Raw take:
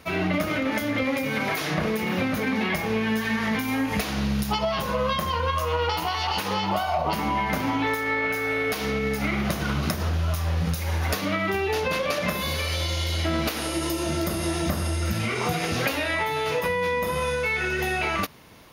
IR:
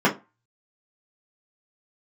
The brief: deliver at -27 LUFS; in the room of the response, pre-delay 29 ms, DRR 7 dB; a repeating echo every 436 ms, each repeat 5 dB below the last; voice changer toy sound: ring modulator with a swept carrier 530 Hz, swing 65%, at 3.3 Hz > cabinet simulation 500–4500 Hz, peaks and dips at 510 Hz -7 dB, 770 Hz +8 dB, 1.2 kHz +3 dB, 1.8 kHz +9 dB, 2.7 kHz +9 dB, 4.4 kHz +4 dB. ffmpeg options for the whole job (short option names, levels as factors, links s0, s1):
-filter_complex "[0:a]aecho=1:1:436|872|1308|1744|2180|2616|3052:0.562|0.315|0.176|0.0988|0.0553|0.031|0.0173,asplit=2[s0][s1];[1:a]atrim=start_sample=2205,adelay=29[s2];[s1][s2]afir=irnorm=-1:irlink=0,volume=0.0531[s3];[s0][s3]amix=inputs=2:normalize=0,aeval=exprs='val(0)*sin(2*PI*530*n/s+530*0.65/3.3*sin(2*PI*3.3*n/s))':c=same,highpass=500,equalizer=f=510:t=q:w=4:g=-7,equalizer=f=770:t=q:w=4:g=8,equalizer=f=1200:t=q:w=4:g=3,equalizer=f=1800:t=q:w=4:g=9,equalizer=f=2700:t=q:w=4:g=9,equalizer=f=4400:t=q:w=4:g=4,lowpass=f=4500:w=0.5412,lowpass=f=4500:w=1.3066,volume=0.531"